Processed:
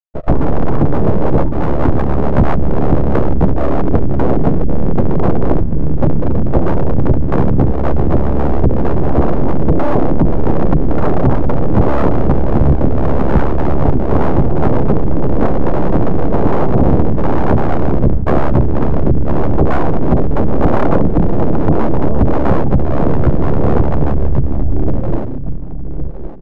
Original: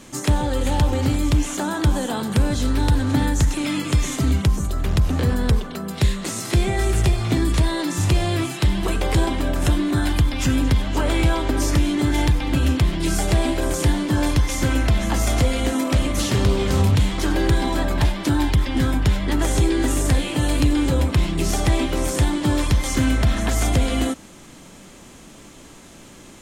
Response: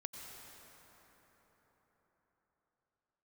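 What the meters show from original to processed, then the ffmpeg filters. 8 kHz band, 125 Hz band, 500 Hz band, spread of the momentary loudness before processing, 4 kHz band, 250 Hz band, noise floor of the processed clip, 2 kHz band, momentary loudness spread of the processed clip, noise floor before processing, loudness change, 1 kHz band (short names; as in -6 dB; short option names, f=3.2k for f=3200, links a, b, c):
under -25 dB, +5.5 dB, +10.5 dB, 3 LU, under -10 dB, +6.5 dB, -16 dBFS, -2.0 dB, 3 LU, -44 dBFS, +5.5 dB, +8.5 dB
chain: -filter_complex "[0:a]acrossover=split=830|2400[a][b][c];[b]acompressor=threshold=-44dB:ratio=8[d];[a][d][c]amix=inputs=3:normalize=0,afftfilt=real='re*gte(hypot(re,im),0.224)':imag='im*gte(hypot(re,im),0.224)':win_size=1024:overlap=0.75,tremolo=f=70:d=0.947,lowshelf=f=65:g=12,asplit=2[e][f];[f]adelay=1113,lowpass=f=2.1k:p=1,volume=-7dB,asplit=2[g][h];[h]adelay=1113,lowpass=f=2.1k:p=1,volume=0.24,asplit=2[i][j];[j]adelay=1113,lowpass=f=2.1k:p=1,volume=0.24[k];[e][g][i][k]amix=inputs=4:normalize=0,acrossover=split=130|3000[l][m][n];[l]acompressor=threshold=-18dB:ratio=3[o];[o][m][n]amix=inputs=3:normalize=0,flanger=delay=5.9:depth=7.9:regen=2:speed=0.19:shape=sinusoidal,aeval=exprs='abs(val(0))':c=same,highshelf=f=2.2k:g=-10,aeval=exprs='0.596*sin(PI/2*7.94*val(0)/0.596)':c=same"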